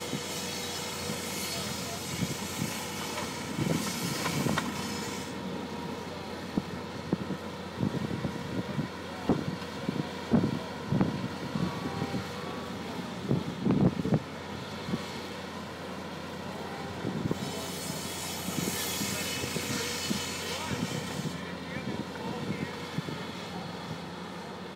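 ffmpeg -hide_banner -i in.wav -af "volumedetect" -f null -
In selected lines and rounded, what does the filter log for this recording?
mean_volume: -33.5 dB
max_volume: -16.3 dB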